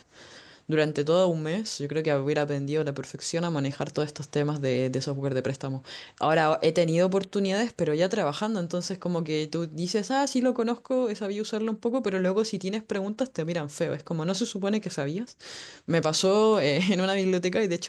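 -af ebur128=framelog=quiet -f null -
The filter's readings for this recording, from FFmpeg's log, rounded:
Integrated loudness:
  I:         -27.0 LUFS
  Threshold: -37.2 LUFS
Loudness range:
  LRA:         3.6 LU
  Threshold: -47.5 LUFS
  LRA low:   -29.3 LUFS
  LRA high:  -25.8 LUFS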